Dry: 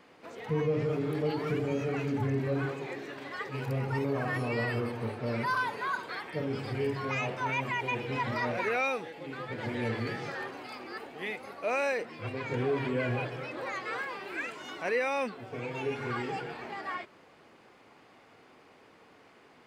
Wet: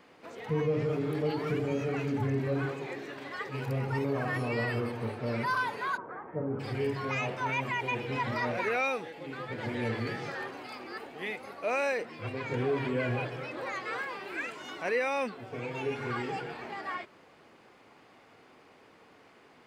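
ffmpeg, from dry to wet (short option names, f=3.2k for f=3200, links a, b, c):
-filter_complex "[0:a]asplit=3[a][b][c];[a]afade=t=out:st=5.96:d=0.02[d];[b]lowpass=f=1.3k:w=0.5412,lowpass=f=1.3k:w=1.3066,afade=t=in:st=5.96:d=0.02,afade=t=out:st=6.59:d=0.02[e];[c]afade=t=in:st=6.59:d=0.02[f];[d][e][f]amix=inputs=3:normalize=0"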